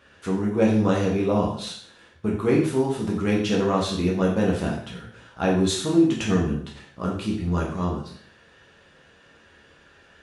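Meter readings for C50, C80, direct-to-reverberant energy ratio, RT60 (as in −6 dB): 4.5 dB, 8.5 dB, −3.5 dB, 0.60 s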